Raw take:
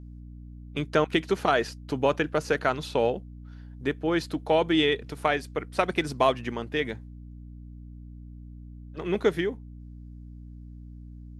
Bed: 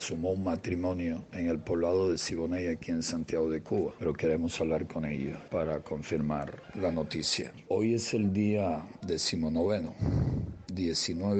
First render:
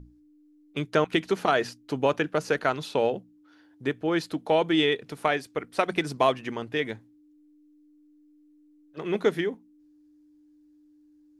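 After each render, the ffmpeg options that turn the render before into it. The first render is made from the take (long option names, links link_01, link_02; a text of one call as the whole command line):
ffmpeg -i in.wav -af "bandreject=frequency=60:width_type=h:width=6,bandreject=frequency=120:width_type=h:width=6,bandreject=frequency=180:width_type=h:width=6,bandreject=frequency=240:width_type=h:width=6" out.wav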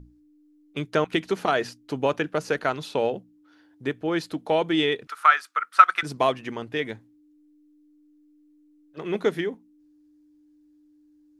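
ffmpeg -i in.wav -filter_complex "[0:a]asettb=1/sr,asplit=3[link_01][link_02][link_03];[link_01]atrim=end=5.074[link_04];[link_02]atrim=start=5.07:end=6.03,asetpts=PTS-STARTPTS,afade=type=in:duration=0.004:curve=qsin,afade=type=out:start_time=0.956:duration=0.004:curve=qsin,highpass=frequency=1300:width_type=q:width=9.2[link_05];[link_03]atrim=start=6.026[link_06];[link_04][link_05]acrossfade=duration=0.004:curve1=hsin:curve2=qsin[link_07];[link_07][link_06]acrossfade=duration=0.004:curve1=qsin:curve2=hsin" out.wav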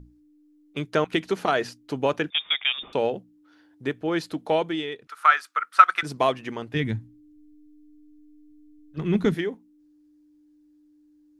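ffmpeg -i in.wav -filter_complex "[0:a]asettb=1/sr,asplit=3[link_01][link_02][link_03];[link_01]atrim=end=2.304[link_04];[link_02]atrim=start=2.3:end=2.93,asetpts=PTS-STARTPTS,afade=type=in:duration=0.004:curve=qsin,afade=type=out:start_time=0.626:duration=0.004:curve=qsin,lowpass=frequency=3200:width_type=q:width=0.5098,lowpass=frequency=3200:width_type=q:width=0.6013,lowpass=frequency=3200:width_type=q:width=0.9,lowpass=frequency=3200:width_type=q:width=2.563,afreqshift=-3800[link_05];[link_03]atrim=start=2.926[link_06];[link_04][link_05]acrossfade=duration=0.004:curve1=hsin:curve2=qsin[link_07];[link_07][link_06]acrossfade=duration=0.004:curve1=qsin:curve2=hsin,asplit=3[link_08][link_09][link_10];[link_08]afade=type=out:start_time=6.74:duration=0.02[link_11];[link_09]asubboost=boost=11:cutoff=160,afade=type=in:start_time=6.74:duration=0.02,afade=type=out:start_time=9.34:duration=0.02[link_12];[link_10]afade=type=in:start_time=9.34:duration=0.02[link_13];[link_11][link_12][link_13]amix=inputs=3:normalize=0,asplit=3[link_14][link_15][link_16];[link_14]atrim=end=4.83,asetpts=PTS-STARTPTS,afade=type=out:start_time=4.55:duration=0.28:silence=0.354813[link_17];[link_15]atrim=start=4.83:end=5.03,asetpts=PTS-STARTPTS,volume=-9dB[link_18];[link_16]atrim=start=5.03,asetpts=PTS-STARTPTS,afade=type=in:duration=0.28:silence=0.354813[link_19];[link_17][link_18][link_19]concat=n=3:v=0:a=1" out.wav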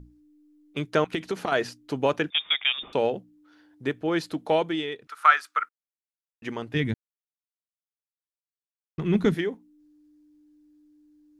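ffmpeg -i in.wav -filter_complex "[0:a]asettb=1/sr,asplit=3[link_01][link_02][link_03];[link_01]atrim=end=1.104[link_04];[link_02]atrim=start=1.1:end=1.52,asetpts=PTS-STARTPTS,afade=type=in:duration=0.004:curve=qsin,afade=type=out:start_time=0.416:duration=0.004:curve=qsin,acompressor=threshold=-23dB:ratio=6:attack=3.2:release=140:knee=1:detection=peak[link_05];[link_03]atrim=start=1.516[link_06];[link_04][link_05]acrossfade=duration=0.004:curve1=hsin:curve2=qsin[link_07];[link_07][link_06]acrossfade=duration=0.004:curve1=qsin:curve2=hsin,asplit=5[link_08][link_09][link_10][link_11][link_12];[link_08]atrim=end=5.69,asetpts=PTS-STARTPTS,afade=type=out:start_time=5.686:duration=0.004:curve=hsin[link_13];[link_09]atrim=start=5.69:end=6.42,asetpts=PTS-STARTPTS,volume=0[link_14];[link_10]atrim=start=6.42:end=6.94,asetpts=PTS-STARTPTS,afade=type=in:duration=0.004:curve=hsin,afade=type=out:start_time=0.516:duration=0.004:curve=hsin[link_15];[link_11]atrim=start=6.94:end=8.98,asetpts=PTS-STARTPTS,volume=0[link_16];[link_12]atrim=start=8.98,asetpts=PTS-STARTPTS,afade=type=in:duration=0.004:curve=hsin[link_17];[link_13][link_14][link_15][link_16][link_17]concat=n=5:v=0:a=1" out.wav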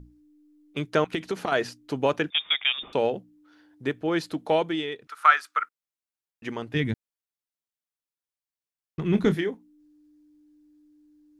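ffmpeg -i in.wav -filter_complex "[0:a]asettb=1/sr,asplit=3[link_01][link_02][link_03];[link_01]atrim=end=9.104[link_04];[link_02]atrim=start=9.1:end=9.51,asetpts=PTS-STARTPTS,afade=type=in:duration=0.004:curve=qsin,afade=type=out:start_time=0.406:duration=0.004:curve=qsin,asplit=2[link_05][link_06];[link_06]adelay=26,volume=-11dB[link_07];[link_05][link_07]amix=inputs=2:normalize=0,atrim=end_sample=18081[link_08];[link_03]atrim=start=9.506[link_09];[link_04][link_08]acrossfade=duration=0.004:curve1=hsin:curve2=qsin[link_10];[link_10][link_09]acrossfade=duration=0.004:curve1=qsin:curve2=hsin" out.wav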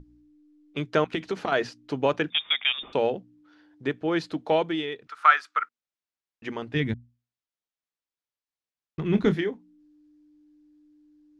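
ffmpeg -i in.wav -af "lowpass=5700,bandreject=frequency=60:width_type=h:width=6,bandreject=frequency=120:width_type=h:width=6,bandreject=frequency=180:width_type=h:width=6,bandreject=frequency=240:width_type=h:width=6" out.wav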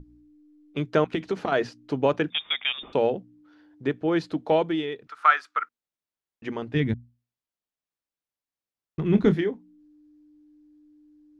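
ffmpeg -i in.wav -af "tiltshelf=frequency=970:gain=3" out.wav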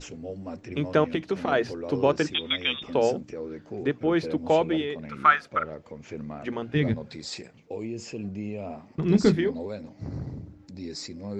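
ffmpeg -i in.wav -i bed.wav -filter_complex "[1:a]volume=-6dB[link_01];[0:a][link_01]amix=inputs=2:normalize=0" out.wav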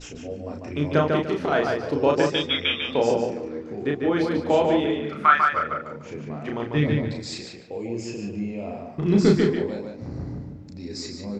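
ffmpeg -i in.wav -filter_complex "[0:a]asplit=2[link_01][link_02];[link_02]adelay=34,volume=-3dB[link_03];[link_01][link_03]amix=inputs=2:normalize=0,asplit=2[link_04][link_05];[link_05]adelay=147,lowpass=frequency=4100:poles=1,volume=-3.5dB,asplit=2[link_06][link_07];[link_07]adelay=147,lowpass=frequency=4100:poles=1,volume=0.29,asplit=2[link_08][link_09];[link_09]adelay=147,lowpass=frequency=4100:poles=1,volume=0.29,asplit=2[link_10][link_11];[link_11]adelay=147,lowpass=frequency=4100:poles=1,volume=0.29[link_12];[link_06][link_08][link_10][link_12]amix=inputs=4:normalize=0[link_13];[link_04][link_13]amix=inputs=2:normalize=0" out.wav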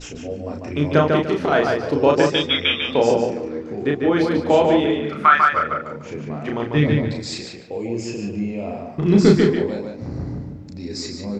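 ffmpeg -i in.wav -af "volume=4.5dB,alimiter=limit=-1dB:level=0:latency=1" out.wav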